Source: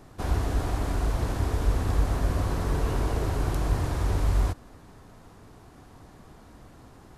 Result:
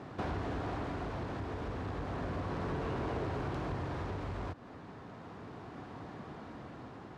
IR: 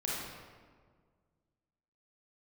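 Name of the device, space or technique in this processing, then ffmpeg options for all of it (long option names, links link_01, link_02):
AM radio: -af "highpass=120,lowpass=3200,acompressor=threshold=-38dB:ratio=5,asoftclip=type=tanh:threshold=-34dB,tremolo=f=0.33:d=0.3,volume=6dB"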